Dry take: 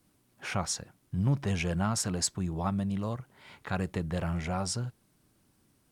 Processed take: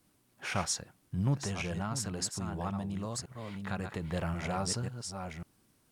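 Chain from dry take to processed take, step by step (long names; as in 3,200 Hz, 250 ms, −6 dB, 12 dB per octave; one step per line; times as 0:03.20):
delay that plays each chunk backwards 543 ms, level −7 dB
low-shelf EQ 380 Hz −3 dB
0:01.34–0:04.02: downward compressor 2 to 1, threshold −35 dBFS, peak gain reduction 6.5 dB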